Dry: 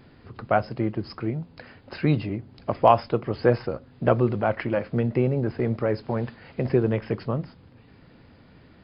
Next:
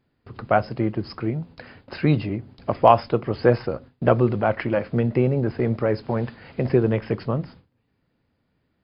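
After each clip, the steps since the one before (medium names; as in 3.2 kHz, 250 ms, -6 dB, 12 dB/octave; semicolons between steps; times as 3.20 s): gate with hold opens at -38 dBFS; trim +2.5 dB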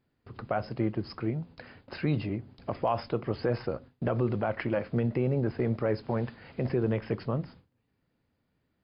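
peak limiter -12 dBFS, peak gain reduction 11 dB; trim -5.5 dB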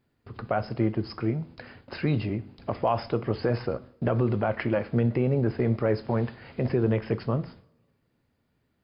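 two-slope reverb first 0.55 s, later 1.7 s, from -20 dB, DRR 14 dB; trim +3 dB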